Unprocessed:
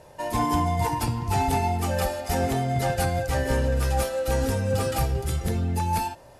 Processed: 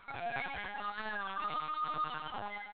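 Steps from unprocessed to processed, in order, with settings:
loose part that buzzes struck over −31 dBFS, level −27 dBFS
Butterworth high-pass 230 Hz 48 dB per octave
comb filter 6.1 ms, depth 73%
brickwall limiter −17 dBFS, peak gain reduction 4.5 dB
rotating-speaker cabinet horn 0.7 Hz, later 5 Hz, at 0:02.50
soft clipping −31 dBFS, distortion −10 dB
flanger 0.46 Hz, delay 9 ms, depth 6.7 ms, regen −17%
Butterworth band-reject 820 Hz, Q 5.5
single-tap delay 232 ms −5.5 dB
wrong playback speed 33 rpm record played at 78 rpm
linear-prediction vocoder at 8 kHz pitch kept
wow of a warped record 33 1/3 rpm, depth 100 cents

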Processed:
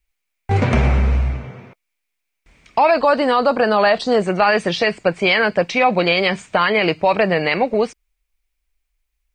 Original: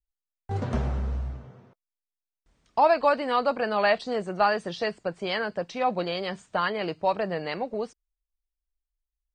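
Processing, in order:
parametric band 2,300 Hz +14.5 dB 0.49 octaves, from 0:02.91 −3 dB, from 0:04.22 +11 dB
boost into a limiter +18 dB
level −5 dB

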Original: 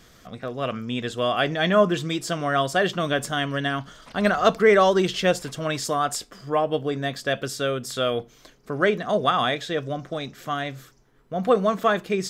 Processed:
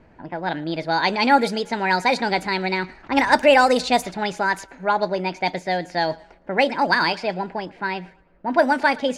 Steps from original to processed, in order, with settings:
feedback echo with a high-pass in the loop 151 ms, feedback 46%, high-pass 420 Hz, level −21 dB
change of speed 1.34×
low-pass that shuts in the quiet parts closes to 1,300 Hz, open at −15 dBFS
level +2.5 dB

